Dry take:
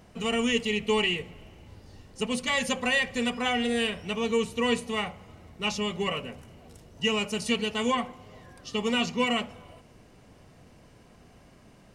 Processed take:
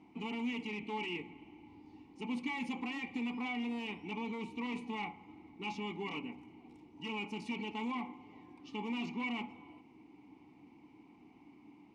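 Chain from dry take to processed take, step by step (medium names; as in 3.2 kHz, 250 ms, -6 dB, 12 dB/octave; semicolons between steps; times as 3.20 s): in parallel at 0 dB: compressor with a negative ratio -31 dBFS, ratio -1; on the sum: wavefolder -18.5 dBFS; vowel filter u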